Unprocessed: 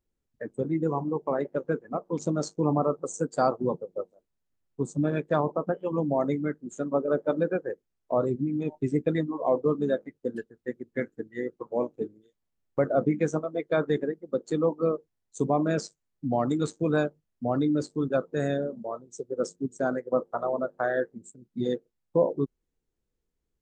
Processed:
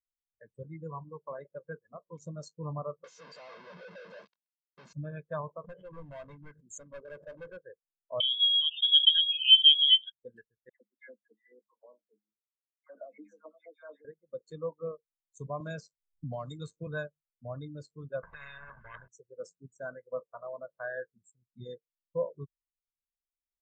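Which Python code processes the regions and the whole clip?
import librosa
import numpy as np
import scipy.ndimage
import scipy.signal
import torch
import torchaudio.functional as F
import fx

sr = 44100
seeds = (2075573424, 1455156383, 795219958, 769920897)

y = fx.chain(x, sr, fx.clip_1bit(),
    fx.cheby1_bandpass(low_hz=180.0, high_hz=5200.0, order=3),
    fx.high_shelf(hz=3900.0, db=-6.0), at=(3.04, 4.93))
y = fx.chain(y, sr, fx.highpass(hz=43.0, slope=12),
    fx.overload_stage(gain_db=27.0),
    fx.pre_swell(db_per_s=71.0), at=(5.64, 7.57))
y = fx.chain(y, sr, fx.comb(ms=3.9, depth=0.43),
    fx.freq_invert(carrier_hz=3600),
    fx.pre_swell(db_per_s=110.0), at=(8.2, 10.12))
y = fx.chain(y, sr, fx.chopper(hz=4.2, depth_pct=65, duty_pct=45),
    fx.cheby_ripple_highpass(hz=200.0, ripple_db=6),
    fx.dispersion(late='lows', ms=119.0, hz=1700.0), at=(10.69, 14.05))
y = fx.chain(y, sr, fx.notch(hz=1800.0, q=7.8),
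    fx.band_squash(depth_pct=100), at=(15.6, 16.87))
y = fx.chain(y, sr, fx.lowpass_res(hz=1600.0, q=6.2),
    fx.over_compress(threshold_db=-32.0, ratio=-0.5),
    fx.spectral_comp(ratio=10.0), at=(18.23, 19.08))
y = fx.peak_eq(y, sr, hz=380.0, db=-13.0, octaves=1.9)
y = y + 0.48 * np.pad(y, (int(1.9 * sr / 1000.0), 0))[:len(y)]
y = fx.spectral_expand(y, sr, expansion=1.5)
y = y * 10.0 ** (1.0 / 20.0)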